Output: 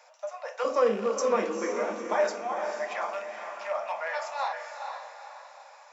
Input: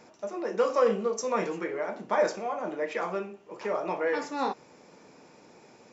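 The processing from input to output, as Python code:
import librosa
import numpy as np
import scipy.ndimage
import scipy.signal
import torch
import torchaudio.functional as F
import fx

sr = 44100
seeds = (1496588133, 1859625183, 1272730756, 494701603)

y = fx.rattle_buzz(x, sr, strikes_db=-37.0, level_db=-34.0)
y = fx.steep_highpass(y, sr, hz=fx.steps((0.0, 520.0), (0.63, 200.0), (2.13, 560.0)), slope=96)
y = fx.echo_diffused(y, sr, ms=463, feedback_pct=42, wet_db=-6)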